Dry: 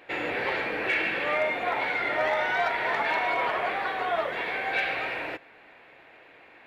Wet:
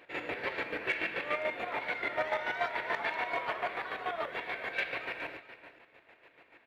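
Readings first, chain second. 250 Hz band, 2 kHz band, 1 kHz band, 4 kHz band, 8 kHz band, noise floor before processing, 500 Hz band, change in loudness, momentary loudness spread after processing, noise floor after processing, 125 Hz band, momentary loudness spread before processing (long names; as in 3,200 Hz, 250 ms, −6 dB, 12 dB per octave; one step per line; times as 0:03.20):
−7.5 dB, −7.5 dB, −8.5 dB, −7.0 dB, can't be measured, −53 dBFS, −7.5 dB, −7.5 dB, 6 LU, −65 dBFS, −7.0 dB, 4 LU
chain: notch filter 780 Hz, Q 12
square-wave tremolo 6.9 Hz, depth 60%, duty 35%
on a send: single-tap delay 416 ms −13 dB
on the sum: level −4 dB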